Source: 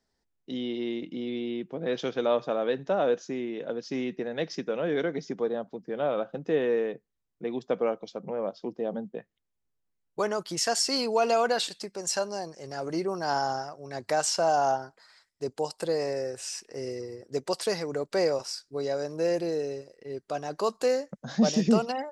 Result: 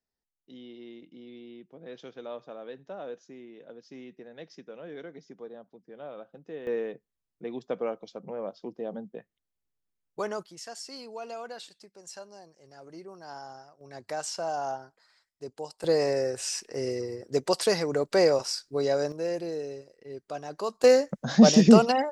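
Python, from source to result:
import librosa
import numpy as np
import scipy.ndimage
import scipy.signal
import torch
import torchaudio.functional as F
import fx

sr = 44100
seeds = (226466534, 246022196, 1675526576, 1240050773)

y = fx.gain(x, sr, db=fx.steps((0.0, -14.0), (6.67, -4.0), (10.46, -15.0), (13.81, -7.5), (15.84, 4.0), (19.12, -4.0), (20.84, 7.0)))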